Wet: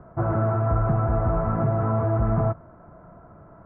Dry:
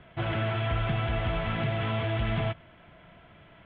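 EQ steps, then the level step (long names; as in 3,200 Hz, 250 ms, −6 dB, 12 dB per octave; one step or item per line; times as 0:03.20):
Chebyshev low-pass filter 1,300 Hz, order 4
+7.5 dB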